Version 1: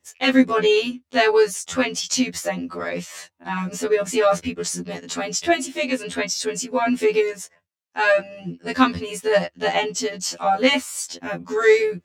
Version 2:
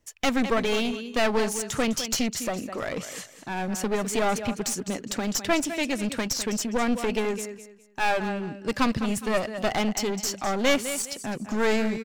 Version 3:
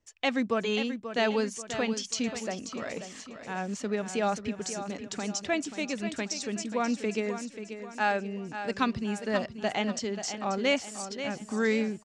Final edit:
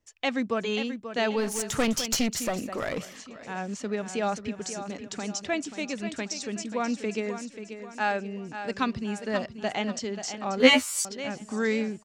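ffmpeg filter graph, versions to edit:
ffmpeg -i take0.wav -i take1.wav -i take2.wav -filter_complex "[2:a]asplit=3[link_01][link_02][link_03];[link_01]atrim=end=1.59[link_04];[1:a]atrim=start=1.35:end=3.19[link_05];[link_02]atrim=start=2.95:end=10.602[link_06];[0:a]atrim=start=10.598:end=11.052[link_07];[link_03]atrim=start=11.048[link_08];[link_04][link_05]acrossfade=duration=0.24:curve1=tri:curve2=tri[link_09];[link_09][link_06]acrossfade=duration=0.24:curve1=tri:curve2=tri[link_10];[link_10][link_07]acrossfade=duration=0.004:curve1=hsin:curve2=hsin[link_11];[link_11][link_08]acrossfade=duration=0.004:curve1=hsin:curve2=hsin" out.wav

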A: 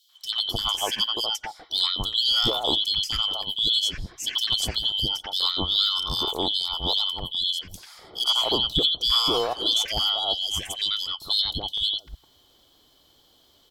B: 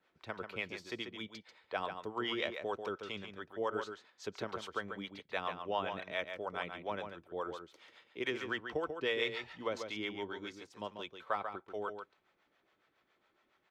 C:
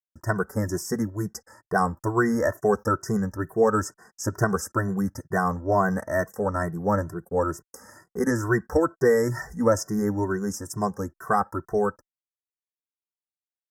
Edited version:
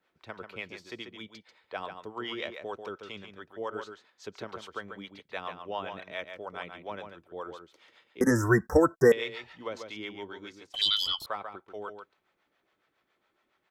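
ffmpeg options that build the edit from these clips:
ffmpeg -i take0.wav -i take1.wav -i take2.wav -filter_complex "[1:a]asplit=3[link_01][link_02][link_03];[link_01]atrim=end=8.212[link_04];[2:a]atrim=start=8.208:end=9.122[link_05];[link_02]atrim=start=9.118:end=10.742[link_06];[0:a]atrim=start=10.738:end=11.262[link_07];[link_03]atrim=start=11.258[link_08];[link_04][link_05]acrossfade=duration=0.004:curve1=hsin:curve2=hsin[link_09];[link_09][link_06]acrossfade=duration=0.004:curve1=hsin:curve2=hsin[link_10];[link_10][link_07]acrossfade=duration=0.004:curve1=hsin:curve2=hsin[link_11];[link_11][link_08]acrossfade=duration=0.004:curve1=hsin:curve2=hsin" out.wav

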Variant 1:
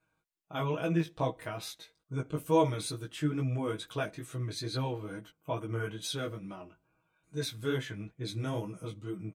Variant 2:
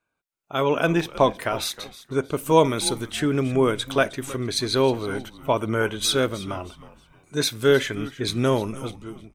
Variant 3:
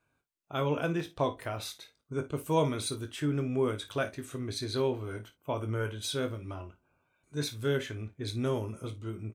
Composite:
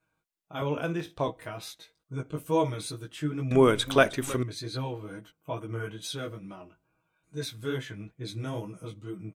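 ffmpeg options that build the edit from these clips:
ffmpeg -i take0.wav -i take1.wav -i take2.wav -filter_complex "[0:a]asplit=3[link_01][link_02][link_03];[link_01]atrim=end=0.622[link_04];[2:a]atrim=start=0.618:end=1.282[link_05];[link_02]atrim=start=1.278:end=3.512[link_06];[1:a]atrim=start=3.508:end=4.432[link_07];[link_03]atrim=start=4.428[link_08];[link_04][link_05]acrossfade=duration=0.004:curve1=hsin:curve2=hsin[link_09];[link_09][link_06]acrossfade=duration=0.004:curve1=hsin:curve2=hsin[link_10];[link_10][link_07]acrossfade=duration=0.004:curve1=hsin:curve2=hsin[link_11];[link_11][link_08]acrossfade=duration=0.004:curve1=hsin:curve2=hsin" out.wav

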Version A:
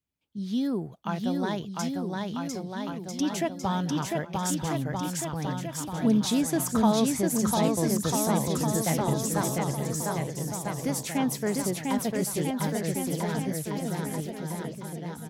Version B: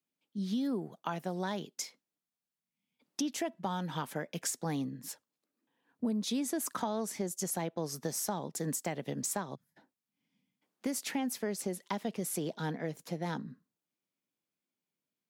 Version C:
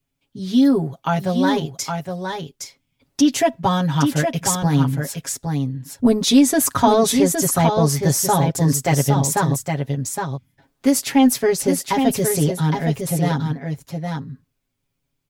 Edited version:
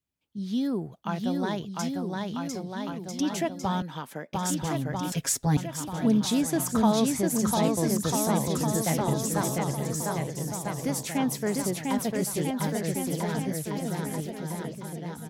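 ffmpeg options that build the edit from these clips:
ffmpeg -i take0.wav -i take1.wav -i take2.wav -filter_complex "[0:a]asplit=3[link_01][link_02][link_03];[link_01]atrim=end=3.822[link_04];[1:a]atrim=start=3.818:end=4.332[link_05];[link_02]atrim=start=4.328:end=5.122[link_06];[2:a]atrim=start=5.118:end=5.572[link_07];[link_03]atrim=start=5.568[link_08];[link_04][link_05]acrossfade=duration=0.004:curve1=hsin:curve2=hsin[link_09];[link_09][link_06]acrossfade=duration=0.004:curve1=hsin:curve2=hsin[link_10];[link_10][link_07]acrossfade=duration=0.004:curve1=hsin:curve2=hsin[link_11];[link_11][link_08]acrossfade=duration=0.004:curve1=hsin:curve2=hsin" out.wav

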